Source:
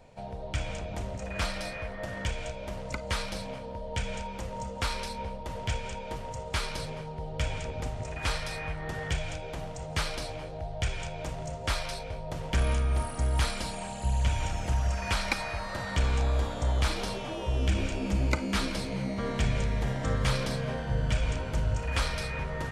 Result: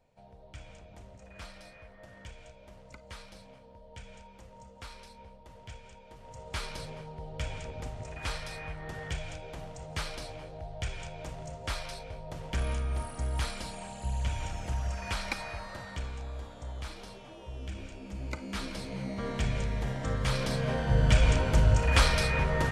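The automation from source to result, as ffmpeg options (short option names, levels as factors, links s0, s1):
-af "volume=5.01,afade=t=in:st=6.16:d=0.43:silence=0.316228,afade=t=out:st=15.54:d=0.6:silence=0.398107,afade=t=in:st=18.11:d=1.13:silence=0.316228,afade=t=in:st=20.25:d=0.98:silence=0.354813"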